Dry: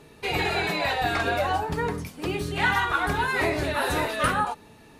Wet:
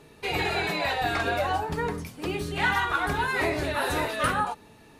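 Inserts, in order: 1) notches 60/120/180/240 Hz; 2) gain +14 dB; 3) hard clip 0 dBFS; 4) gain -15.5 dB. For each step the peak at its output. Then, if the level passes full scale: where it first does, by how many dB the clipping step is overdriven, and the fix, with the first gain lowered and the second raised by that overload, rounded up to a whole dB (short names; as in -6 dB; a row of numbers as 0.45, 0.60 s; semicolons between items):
-10.5, +3.5, 0.0, -15.5 dBFS; step 2, 3.5 dB; step 2 +10 dB, step 4 -11.5 dB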